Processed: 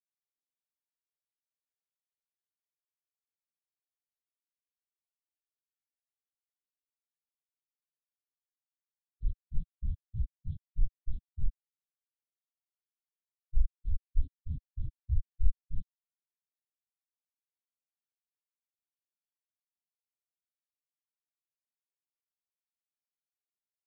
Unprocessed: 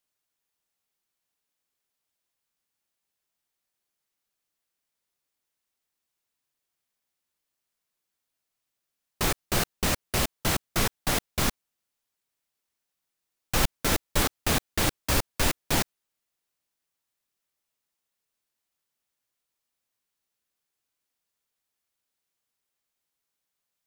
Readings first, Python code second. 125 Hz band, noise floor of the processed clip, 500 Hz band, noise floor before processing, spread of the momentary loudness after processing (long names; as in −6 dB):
−5.5 dB, below −85 dBFS, below −40 dB, −84 dBFS, 8 LU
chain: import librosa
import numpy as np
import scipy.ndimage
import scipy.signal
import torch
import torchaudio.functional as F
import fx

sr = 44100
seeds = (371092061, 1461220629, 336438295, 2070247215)

y = fx.freq_compress(x, sr, knee_hz=2500.0, ratio=4.0)
y = fx.low_shelf(y, sr, hz=360.0, db=10.0)
y = fx.level_steps(y, sr, step_db=23)
y = fx.env_flanger(y, sr, rest_ms=11.7, full_db=-22.5)
y = fx.spectral_expand(y, sr, expansion=4.0)